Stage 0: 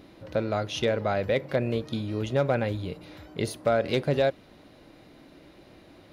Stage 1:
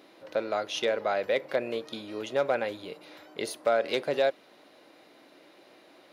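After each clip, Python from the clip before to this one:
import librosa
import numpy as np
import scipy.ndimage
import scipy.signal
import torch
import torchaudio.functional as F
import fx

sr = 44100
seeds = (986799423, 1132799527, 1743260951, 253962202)

y = scipy.signal.sosfilt(scipy.signal.butter(2, 410.0, 'highpass', fs=sr, output='sos'), x)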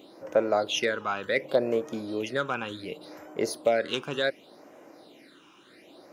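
y = fx.phaser_stages(x, sr, stages=8, low_hz=570.0, high_hz=4000.0, hz=0.68, feedback_pct=30)
y = y * 10.0 ** (5.5 / 20.0)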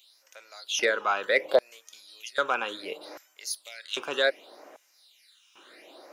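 y = fx.filter_lfo_highpass(x, sr, shape='square', hz=0.63, low_hz=500.0, high_hz=4100.0, q=0.8)
y = y * 10.0 ** (4.0 / 20.0)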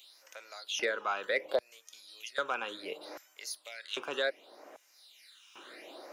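y = fx.band_squash(x, sr, depth_pct=40)
y = y * 10.0 ** (-6.5 / 20.0)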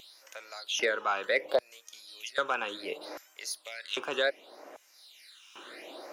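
y = fx.vibrato(x, sr, rate_hz=4.0, depth_cents=32.0)
y = y * 10.0 ** (3.5 / 20.0)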